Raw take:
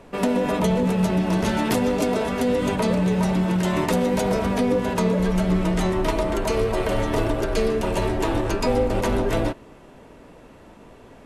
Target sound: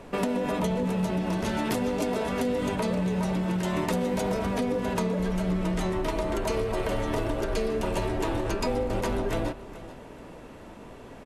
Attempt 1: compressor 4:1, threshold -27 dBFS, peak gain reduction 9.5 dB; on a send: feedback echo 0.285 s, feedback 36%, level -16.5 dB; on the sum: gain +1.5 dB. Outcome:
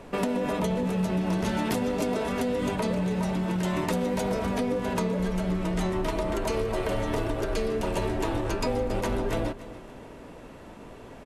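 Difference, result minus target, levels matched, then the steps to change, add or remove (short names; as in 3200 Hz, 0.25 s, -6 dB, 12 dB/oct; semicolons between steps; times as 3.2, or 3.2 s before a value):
echo 0.143 s early
change: feedback echo 0.428 s, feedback 36%, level -16.5 dB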